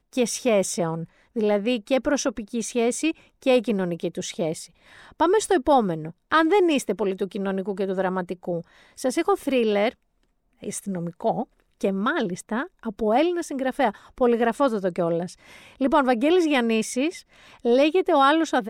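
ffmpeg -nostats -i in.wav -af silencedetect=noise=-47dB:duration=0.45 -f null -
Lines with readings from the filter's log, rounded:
silence_start: 9.94
silence_end: 10.61 | silence_duration: 0.67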